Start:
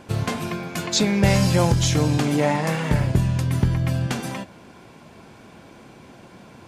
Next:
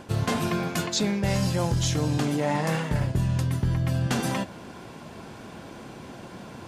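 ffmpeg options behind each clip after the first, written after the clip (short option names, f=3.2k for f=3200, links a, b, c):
-af "equalizer=f=2.3k:w=7:g=-4.5,areverse,acompressor=threshold=-26dB:ratio=6,areverse,volume=4dB"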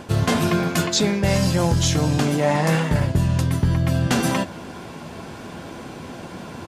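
-filter_complex "[0:a]asplit=2[a][b];[b]adelay=12,volume=-11dB[c];[a][c]amix=inputs=2:normalize=0,volume=6dB"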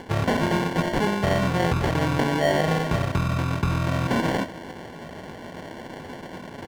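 -filter_complex "[0:a]acrusher=samples=35:mix=1:aa=0.000001,asplit=2[a][b];[b]highpass=f=720:p=1,volume=6dB,asoftclip=type=tanh:threshold=-7dB[c];[a][c]amix=inputs=2:normalize=0,lowpass=f=2.1k:p=1,volume=-6dB"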